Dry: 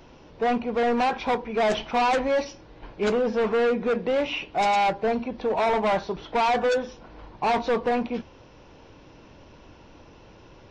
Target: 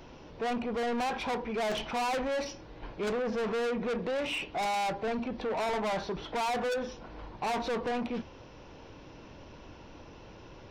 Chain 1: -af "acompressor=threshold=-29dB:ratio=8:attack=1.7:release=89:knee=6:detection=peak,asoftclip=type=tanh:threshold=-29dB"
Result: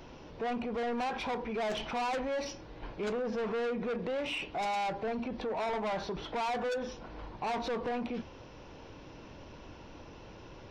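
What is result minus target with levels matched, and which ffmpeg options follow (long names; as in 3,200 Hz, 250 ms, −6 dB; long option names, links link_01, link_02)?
downward compressor: peak gain reduction +6.5 dB
-af "acompressor=threshold=-20.5dB:ratio=8:attack=1.7:release=89:knee=6:detection=peak,asoftclip=type=tanh:threshold=-29dB"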